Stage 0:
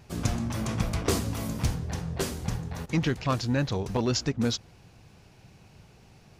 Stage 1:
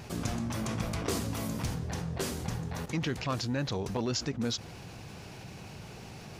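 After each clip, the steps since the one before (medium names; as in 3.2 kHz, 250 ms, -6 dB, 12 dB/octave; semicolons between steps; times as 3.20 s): bass shelf 60 Hz -11.5 dB; level flattener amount 50%; trim -6.5 dB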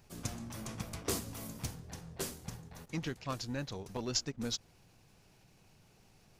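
treble shelf 7 kHz +10 dB; added noise brown -50 dBFS; upward expansion 2.5:1, over -39 dBFS; trim -1.5 dB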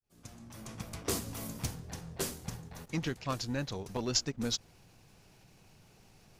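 fade-in on the opening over 1.39 s; trim +3.5 dB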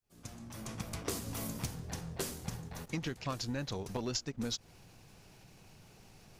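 compression 6:1, threshold -36 dBFS, peak gain reduction 11 dB; trim +2.5 dB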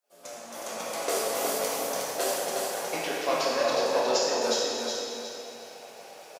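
resonant high-pass 570 Hz, resonance Q 3.7; feedback delay 364 ms, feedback 35%, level -4 dB; plate-style reverb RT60 2.3 s, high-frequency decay 0.8×, DRR -6 dB; trim +3.5 dB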